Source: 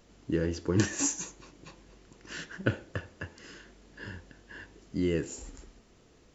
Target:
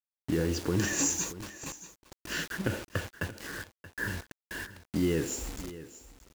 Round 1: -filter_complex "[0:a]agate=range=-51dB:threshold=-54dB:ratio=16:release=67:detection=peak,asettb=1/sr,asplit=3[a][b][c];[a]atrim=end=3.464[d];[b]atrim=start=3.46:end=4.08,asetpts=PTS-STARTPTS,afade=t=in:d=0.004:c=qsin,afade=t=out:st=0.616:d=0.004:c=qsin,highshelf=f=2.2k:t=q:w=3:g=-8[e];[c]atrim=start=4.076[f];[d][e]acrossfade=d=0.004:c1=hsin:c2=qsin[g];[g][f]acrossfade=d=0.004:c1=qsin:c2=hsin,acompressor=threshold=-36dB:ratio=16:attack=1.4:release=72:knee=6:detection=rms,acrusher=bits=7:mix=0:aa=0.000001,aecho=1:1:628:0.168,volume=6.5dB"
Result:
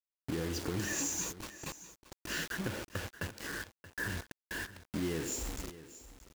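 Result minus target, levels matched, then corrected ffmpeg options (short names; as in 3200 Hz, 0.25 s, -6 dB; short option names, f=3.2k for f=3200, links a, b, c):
compressor: peak gain reduction +8 dB
-filter_complex "[0:a]agate=range=-51dB:threshold=-54dB:ratio=16:release=67:detection=peak,asettb=1/sr,asplit=3[a][b][c];[a]atrim=end=3.464[d];[b]atrim=start=3.46:end=4.08,asetpts=PTS-STARTPTS,afade=t=in:d=0.004:c=qsin,afade=t=out:st=0.616:d=0.004:c=qsin,highshelf=f=2.2k:t=q:w=3:g=-8[e];[c]atrim=start=4.076[f];[d][e]acrossfade=d=0.004:c1=hsin:c2=qsin[g];[g][f]acrossfade=d=0.004:c1=qsin:c2=hsin,acompressor=threshold=-27.5dB:ratio=16:attack=1.4:release=72:knee=6:detection=rms,acrusher=bits=7:mix=0:aa=0.000001,aecho=1:1:628:0.168,volume=6.5dB"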